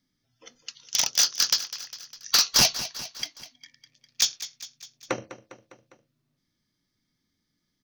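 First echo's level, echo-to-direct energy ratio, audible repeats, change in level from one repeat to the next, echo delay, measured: -14.0 dB, -12.0 dB, 4, -4.5 dB, 0.202 s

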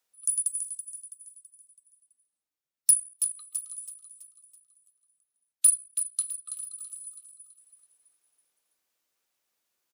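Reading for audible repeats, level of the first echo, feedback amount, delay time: 4, -10.0 dB, 45%, 0.329 s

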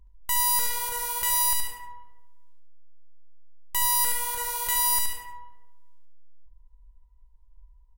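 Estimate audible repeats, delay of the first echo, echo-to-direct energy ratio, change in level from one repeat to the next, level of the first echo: 3, 72 ms, -4.5 dB, -9.5 dB, -5.0 dB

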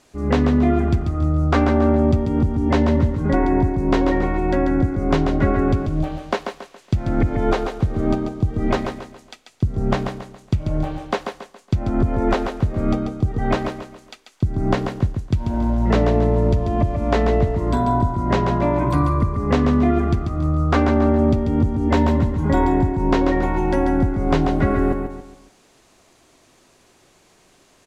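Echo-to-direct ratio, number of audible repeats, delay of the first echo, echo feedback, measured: -6.0 dB, 4, 0.139 s, 37%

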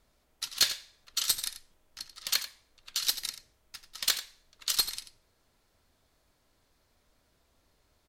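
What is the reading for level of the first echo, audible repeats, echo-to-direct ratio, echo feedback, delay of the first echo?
-12.5 dB, 1, -12.5 dB, no steady repeat, 88 ms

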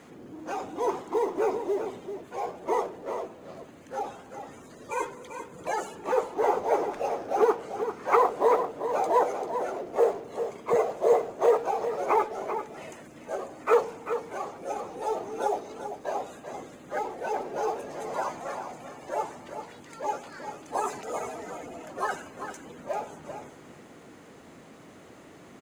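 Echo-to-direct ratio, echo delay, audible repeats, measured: -9.0 dB, 0.392 s, 1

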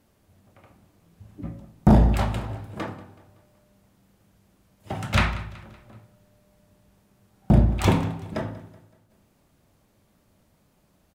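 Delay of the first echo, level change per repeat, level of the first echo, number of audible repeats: 0.188 s, -7.0 dB, -19.0 dB, 3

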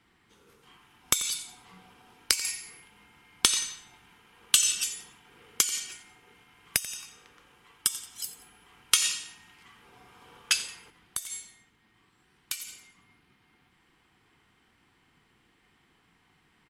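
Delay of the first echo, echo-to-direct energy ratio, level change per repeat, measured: 88 ms, -16.0 dB, -7.0 dB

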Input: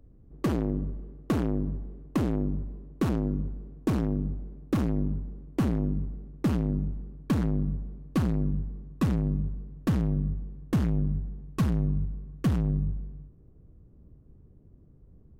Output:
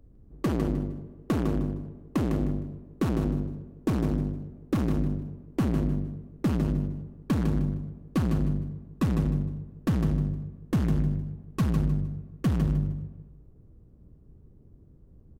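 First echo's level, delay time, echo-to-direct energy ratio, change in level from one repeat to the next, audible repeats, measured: -6.5 dB, 0.154 s, -6.0 dB, -11.5 dB, 3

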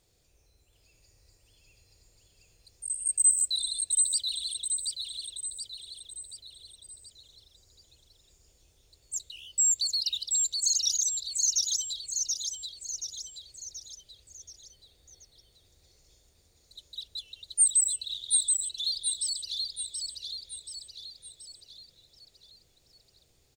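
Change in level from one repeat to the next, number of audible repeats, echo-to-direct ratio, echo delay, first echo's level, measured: -6.0 dB, 5, -2.0 dB, 0.729 s, -3.0 dB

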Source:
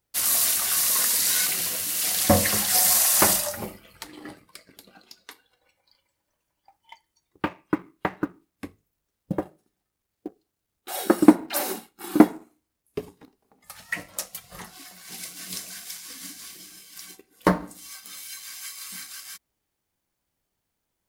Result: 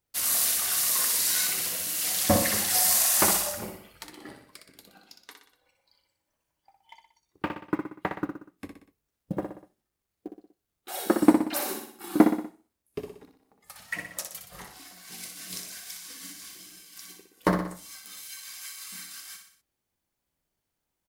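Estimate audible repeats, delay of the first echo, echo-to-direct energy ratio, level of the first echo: 4, 61 ms, -5.0 dB, -6.5 dB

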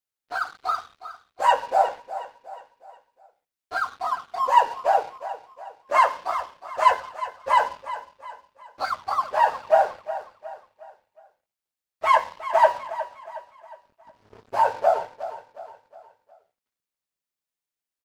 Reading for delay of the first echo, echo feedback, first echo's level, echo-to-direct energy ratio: 0.362 s, 43%, -13.5 dB, -12.5 dB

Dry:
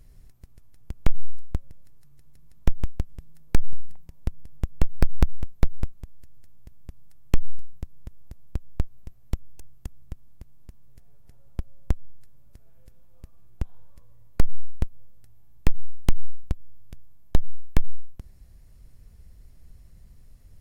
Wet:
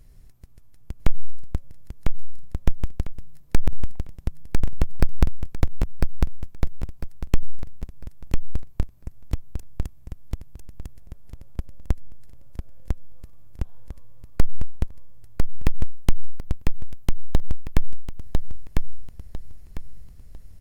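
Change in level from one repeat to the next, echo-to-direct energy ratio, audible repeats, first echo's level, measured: -11.5 dB, -2.5 dB, 3, -3.0 dB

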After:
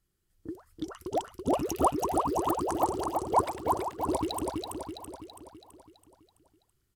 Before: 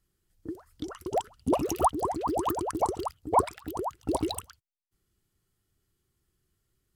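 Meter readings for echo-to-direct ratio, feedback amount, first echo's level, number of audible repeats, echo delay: -2.0 dB, 53%, -3.5 dB, 6, 0.33 s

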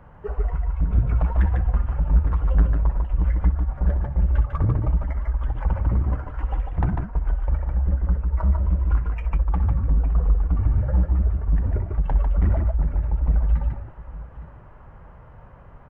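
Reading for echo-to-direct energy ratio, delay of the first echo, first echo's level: -3.0 dB, 61 ms, -14.0 dB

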